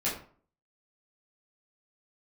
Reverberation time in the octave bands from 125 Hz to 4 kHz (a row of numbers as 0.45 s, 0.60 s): 0.55 s, 0.50 s, 0.45 s, 0.45 s, 0.35 s, 0.30 s